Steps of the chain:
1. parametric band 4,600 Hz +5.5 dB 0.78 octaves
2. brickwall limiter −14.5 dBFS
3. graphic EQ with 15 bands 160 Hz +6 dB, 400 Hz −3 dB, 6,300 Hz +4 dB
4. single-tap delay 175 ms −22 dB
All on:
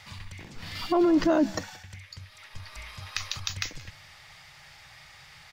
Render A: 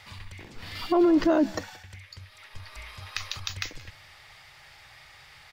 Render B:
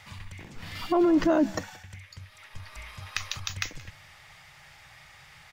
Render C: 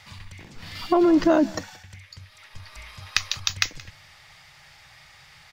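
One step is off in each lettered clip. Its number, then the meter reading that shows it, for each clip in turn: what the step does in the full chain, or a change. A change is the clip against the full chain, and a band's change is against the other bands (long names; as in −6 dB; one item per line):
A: 3, change in integrated loudness +1.0 LU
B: 1, 4 kHz band −2.0 dB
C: 2, change in crest factor +6.0 dB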